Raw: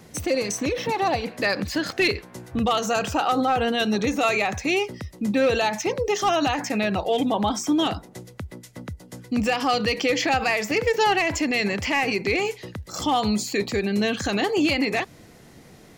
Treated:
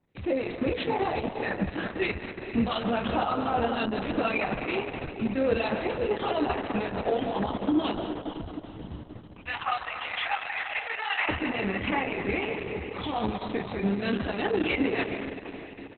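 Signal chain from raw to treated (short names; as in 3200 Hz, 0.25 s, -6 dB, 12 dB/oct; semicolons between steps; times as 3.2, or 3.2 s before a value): 9.21–11.29 HPF 880 Hz 24 dB/oct; gate -37 dBFS, range -23 dB; LPF 2500 Hz 6 dB/oct; limiter -19 dBFS, peak gain reduction 5.5 dB; harmonic tremolo 3.1 Hz, depth 50%, crossover 1800 Hz; doubler 26 ms -6 dB; diffused feedback echo 0.484 s, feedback 45%, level -11 dB; reverb RT60 1.7 s, pre-delay 0.115 s, DRR 7 dB; Opus 6 kbps 48000 Hz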